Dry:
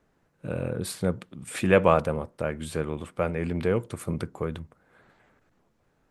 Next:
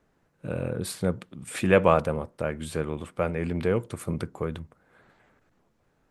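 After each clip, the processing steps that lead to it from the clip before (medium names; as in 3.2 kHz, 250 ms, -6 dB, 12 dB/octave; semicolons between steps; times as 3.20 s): no audible change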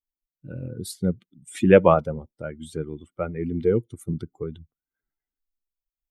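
expander on every frequency bin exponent 2; peaking EQ 320 Hz +8 dB 2.5 oct; trim +1.5 dB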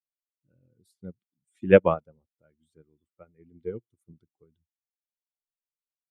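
upward expansion 2.5:1, over -30 dBFS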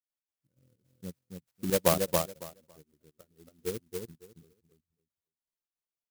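trance gate ".x.xx.xx..xx.x.x" 159 bpm -12 dB; feedback delay 277 ms, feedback 16%, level -3.5 dB; sampling jitter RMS 0.14 ms; trim -1 dB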